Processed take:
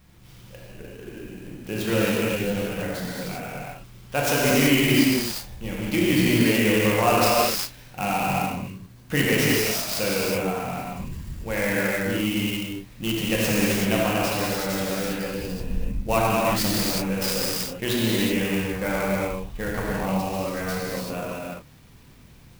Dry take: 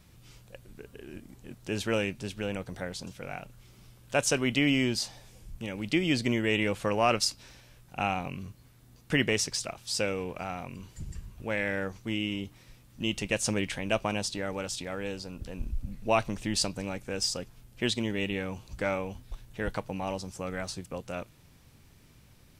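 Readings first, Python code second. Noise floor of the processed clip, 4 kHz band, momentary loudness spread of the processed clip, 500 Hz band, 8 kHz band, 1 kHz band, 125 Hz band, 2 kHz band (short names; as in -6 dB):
-48 dBFS, +6.0 dB, 15 LU, +7.5 dB, +6.0 dB, +8.5 dB, +8.5 dB, +7.0 dB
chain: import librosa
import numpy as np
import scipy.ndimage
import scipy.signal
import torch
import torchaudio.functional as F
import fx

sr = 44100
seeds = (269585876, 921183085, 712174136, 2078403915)

y = fx.rev_gated(x, sr, seeds[0], gate_ms=410, shape='flat', drr_db=-7.0)
y = fx.clock_jitter(y, sr, seeds[1], jitter_ms=0.031)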